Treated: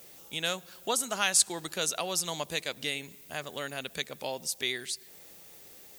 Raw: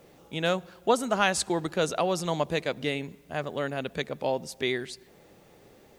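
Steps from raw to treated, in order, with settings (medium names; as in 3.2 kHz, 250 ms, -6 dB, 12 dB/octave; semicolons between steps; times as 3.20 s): pre-emphasis filter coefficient 0.9; in parallel at -0.5 dB: compression, threshold -50 dBFS, peak gain reduction 22 dB; on the sum: trim +7 dB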